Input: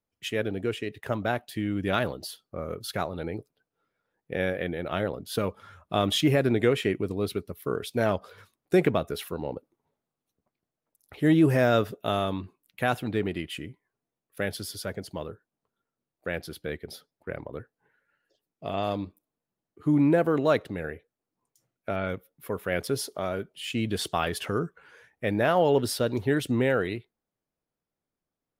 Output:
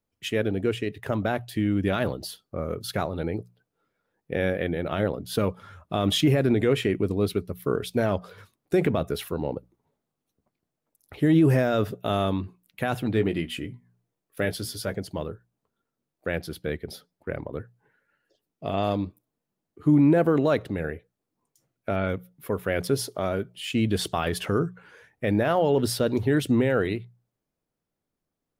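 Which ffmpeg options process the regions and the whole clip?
-filter_complex "[0:a]asettb=1/sr,asplit=3[s0][s1][s2];[s0]atrim=end=13.134[s3];[s1]atrim=start=13.13:end=14.94,asetpts=PTS-STARTPTS,afade=t=in:d=0.004:c=qsin,afade=t=out:st=1.806:d=0.004:c=qsin,bandreject=f=60:t=h:w=6,bandreject=f=120:t=h:w=6,bandreject=f=180:t=h:w=6,bandreject=f=240:t=h:w=6,asplit=2[s4][s5];[s5]adelay=17,volume=0.355[s6];[s4][s6]amix=inputs=2:normalize=0,atrim=end_sample=79821[s7];[s2]atrim=start=14.936[s8];[s3][s7]acrossfade=d=0.004:c1=hsin:c2=qsin[s9];[s9][s8]acrossfade=d=0.004:c1=qsin:c2=hsin,alimiter=limit=0.158:level=0:latency=1:release=28,lowshelf=f=390:g=5,bandreject=f=60:t=h:w=6,bandreject=f=120:t=h:w=6,bandreject=f=180:t=h:w=6,volume=1.19"

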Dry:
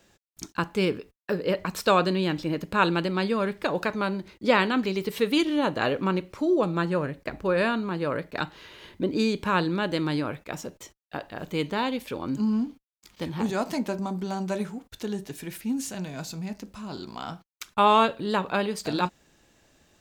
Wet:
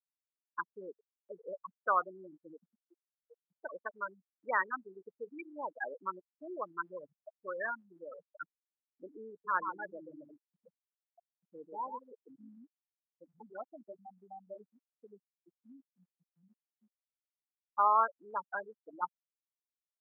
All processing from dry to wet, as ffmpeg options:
-filter_complex "[0:a]asettb=1/sr,asplit=3[s0][s1][s2];[s0]atrim=end=2.674[s3];[s1]atrim=start=2.67:end=3.51,asetpts=PTS-STARTPTS,afade=t=in:d=0.004:c=qsin,afade=t=out:st=0.836:d=0.004:c=qsin,highpass=f=200:p=1,acompressor=threshold=0.0316:ratio=8:attack=3.2:release=140:knee=1:detection=peak,asoftclip=type=hard:threshold=0.0282[s4];[s2]atrim=start=3.506[s5];[s3][s4]acrossfade=d=0.004:c1=hsin:c2=qsin[s6];[s6][s5]acrossfade=d=0.004:c1=qsin:c2=hsin,asettb=1/sr,asplit=3[s7][s8][s9];[s7]atrim=end=9.314[s10];[s8]atrim=start=9.31:end=12.57,asetpts=PTS-STARTPTS,afade=t=in:d=0.004:c=qsin,afade=t=out:st=3.256:d=0.004:c=qsin,acrusher=bits=7:dc=4:mix=0:aa=0.000001,asplit=2[s11][s12];[s12]adelay=136,lowpass=f=2700:p=1,volume=0.668,asplit=2[s13][s14];[s14]adelay=136,lowpass=f=2700:p=1,volume=0.24,asplit=2[s15][s16];[s16]adelay=136,lowpass=f=2700:p=1,volume=0.24[s17];[s11][s13][s15][s17]amix=inputs=4:normalize=0,atrim=end_sample=143766[s18];[s9]atrim=start=12.566[s19];[s10][s18]acrossfade=d=0.004:c1=hsin:c2=qsin[s20];[s20][s19]acrossfade=d=0.004:c1=qsin:c2=hsin,lowpass=2200,afftfilt=real='re*gte(hypot(re,im),0.2)':imag='im*gte(hypot(re,im),0.2)':win_size=1024:overlap=0.75,highpass=1300"

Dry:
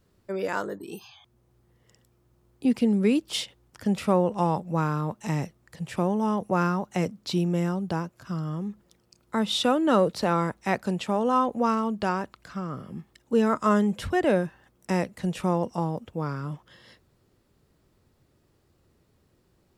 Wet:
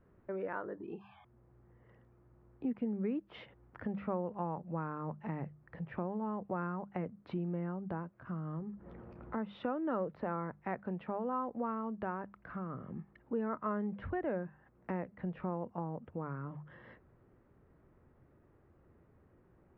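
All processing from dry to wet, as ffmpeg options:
-filter_complex "[0:a]asettb=1/sr,asplit=3[s0][s1][s2];[s0]atrim=end=8.594[s3];[s1]atrim=start=8.59:end=9.38,asetpts=PTS-STARTPTS,afade=t=in:d=0.004:c=qsin,afade=t=out:st=0.786:d=0.004:c=qsin,highshelf=f=2200:g=-10.5,acompressor=mode=upward:threshold=0.02:ratio=2.5:attack=3.2:release=140:knee=2.83:detection=peak,asplit=2[s4][s5];[s5]adelay=13,volume=0.282[s6];[s4][s6]amix=inputs=2:normalize=0,atrim=end_sample=34839[s7];[s2]atrim=start=9.376[s8];[s3][s7]acrossfade=d=0.004:c1=hsin:c2=qsin[s9];[s9][s8]acrossfade=d=0.004:c1=qsin:c2=hsin,lowpass=f=1900:w=0.5412,lowpass=f=1900:w=1.3066,bandreject=f=50:t=h:w=6,bandreject=f=100:t=h:w=6,bandreject=f=150:t=h:w=6,bandreject=f=200:t=h:w=6,acompressor=threshold=0.00501:ratio=2,volume=1.12"

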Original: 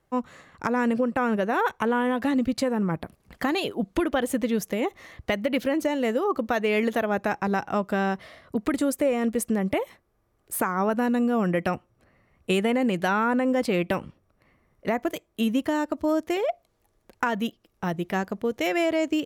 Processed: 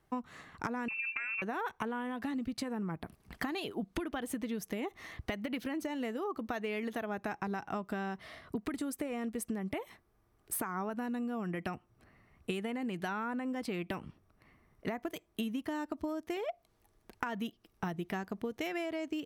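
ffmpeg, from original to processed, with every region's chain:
-filter_complex "[0:a]asettb=1/sr,asplit=3[s0][s1][s2];[s0]atrim=end=0.884[s3];[s1]atrim=start=0.88:end=1.42,asetpts=PTS-STARTPTS,afade=t=in:d=0.004:c=qsin,afade=t=out:st=0.536:d=0.004:c=qsin,acompressor=threshold=0.0562:ratio=4:attack=3.2:release=140:knee=1:detection=peak,aeval=exprs='val(0)+0.01*sin(2*PI*530*n/s)':c=same,lowpass=f=2500:t=q:w=0.5098,lowpass=f=2500:t=q:w=0.6013,lowpass=f=2500:t=q:w=0.9,lowpass=f=2500:t=q:w=2.563,afreqshift=-2900[s4];[s2]atrim=start=1.416[s5];[s3][s4]acrossfade=d=0.004:c1=hsin:c2=qsin[s6];[s6][s5]acrossfade=d=0.004:c1=qsin:c2=hsin,equalizer=f=540:t=o:w=0.2:g=-11.5,bandreject=f=7000:w=13,acompressor=threshold=0.0251:ratio=12,volume=0.891"

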